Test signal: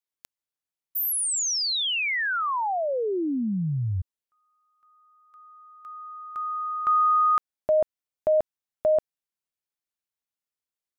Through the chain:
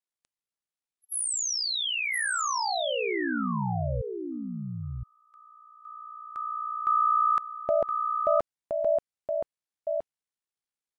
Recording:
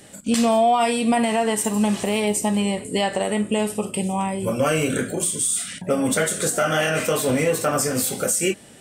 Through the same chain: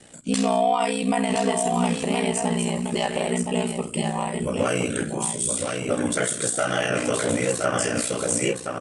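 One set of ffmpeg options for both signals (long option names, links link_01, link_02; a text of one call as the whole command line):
ffmpeg -i in.wav -filter_complex "[0:a]aeval=exprs='val(0)*sin(2*PI*30*n/s)':channel_layout=same,asplit=2[link_01][link_02];[link_02]aecho=0:1:1019:0.562[link_03];[link_01][link_03]amix=inputs=2:normalize=0" -ar 24000 -c:a libmp3lame -b:a 128k out.mp3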